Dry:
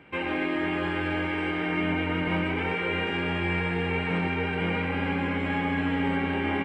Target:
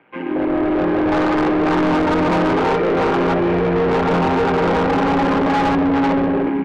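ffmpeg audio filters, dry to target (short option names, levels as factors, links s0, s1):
-filter_complex "[0:a]highpass=f=85:p=1,highshelf=f=4200:g=-7.5,acrossover=split=140|2000[s0][s1][s2];[s1]dynaudnorm=f=320:g=5:m=2.82[s3];[s2]aeval=exprs='val(0)*sin(2*PI*120*n/s)':c=same[s4];[s0][s3][s4]amix=inputs=3:normalize=0,bass=f=250:g=3,treble=f=4000:g=-3,afwtdn=0.1,asplit=2[s5][s6];[s6]highpass=f=720:p=1,volume=50.1,asoftclip=type=tanh:threshold=0.794[s7];[s5][s7]amix=inputs=2:normalize=0,lowpass=f=2900:p=1,volume=0.501,volume=0.447"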